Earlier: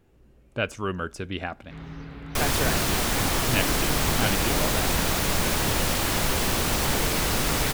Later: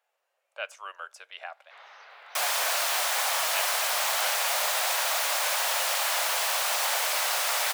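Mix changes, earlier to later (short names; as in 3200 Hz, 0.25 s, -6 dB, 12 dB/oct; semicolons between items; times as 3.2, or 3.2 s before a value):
speech -6.5 dB; master: add steep high-pass 580 Hz 48 dB/oct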